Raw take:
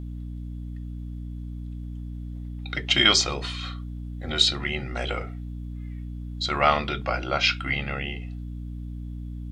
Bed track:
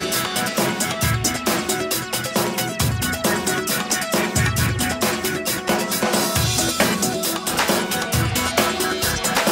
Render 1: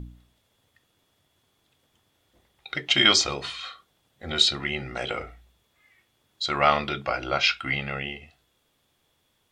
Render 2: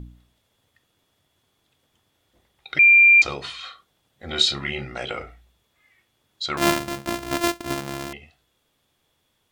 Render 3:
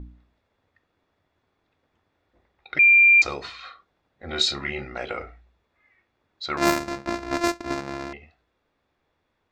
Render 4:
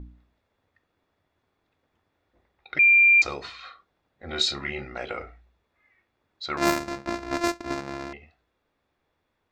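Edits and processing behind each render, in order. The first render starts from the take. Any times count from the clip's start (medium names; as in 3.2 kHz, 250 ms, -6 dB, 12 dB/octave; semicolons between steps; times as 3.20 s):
de-hum 60 Hz, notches 5
2.79–3.22 s: bleep 2.38 kHz -9 dBFS; 4.26–4.85 s: doubling 29 ms -6 dB; 6.57–8.13 s: sorted samples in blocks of 128 samples
level-controlled noise filter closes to 2.9 kHz, open at -14.5 dBFS; graphic EQ with 31 bands 125 Hz -10 dB, 200 Hz -3 dB, 3.15 kHz -11 dB, 10 kHz -9 dB
trim -2 dB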